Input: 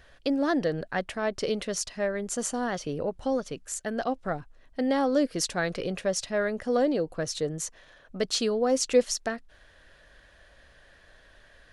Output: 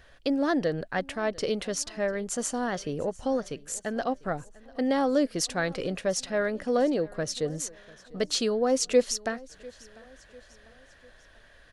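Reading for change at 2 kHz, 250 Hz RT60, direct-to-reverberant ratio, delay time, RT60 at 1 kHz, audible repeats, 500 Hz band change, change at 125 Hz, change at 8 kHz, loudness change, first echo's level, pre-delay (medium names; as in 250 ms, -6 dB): 0.0 dB, no reverb, no reverb, 697 ms, no reverb, 2, 0.0 dB, 0.0 dB, 0.0 dB, 0.0 dB, -22.5 dB, no reverb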